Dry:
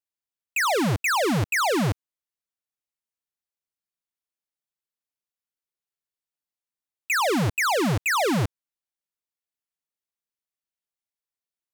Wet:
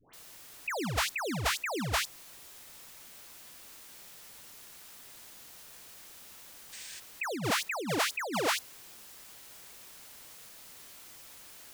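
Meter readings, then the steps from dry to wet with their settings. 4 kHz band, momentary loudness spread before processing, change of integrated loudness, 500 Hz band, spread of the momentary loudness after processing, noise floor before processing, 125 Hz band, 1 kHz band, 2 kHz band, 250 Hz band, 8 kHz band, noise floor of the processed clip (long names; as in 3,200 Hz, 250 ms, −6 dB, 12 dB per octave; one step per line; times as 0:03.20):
−3.5 dB, 6 LU, −9.0 dB, −10.0 dB, 18 LU, below −85 dBFS, −13.0 dB, −9.5 dB, −8.5 dB, −11.5 dB, −4.5 dB, −52 dBFS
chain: high-pass filter sweep 63 Hz → 710 Hz, 0:05.62–0:09.37
background noise white −58 dBFS
all-pass dispersion highs, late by 136 ms, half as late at 1,100 Hz
gain on a spectral selection 0:06.73–0:07.00, 1,500–9,400 Hz +10 dB
in parallel at −2 dB: brickwall limiter −18.5 dBFS, peak gain reduction 9 dB
on the sum: compressor whose output falls as the input rises −26 dBFS, ratio −1
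level −6 dB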